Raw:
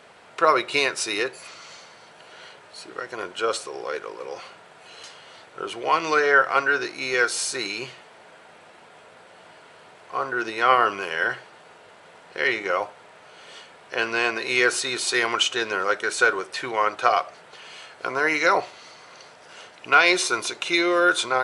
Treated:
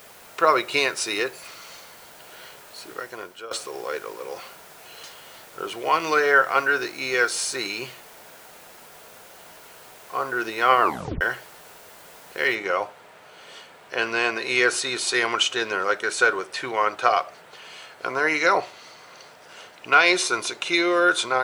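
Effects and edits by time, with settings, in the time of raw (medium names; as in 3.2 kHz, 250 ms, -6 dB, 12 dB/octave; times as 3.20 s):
2.93–3.51 s: fade out, to -18 dB
10.81 s: tape stop 0.40 s
12.55 s: noise floor step -50 dB -66 dB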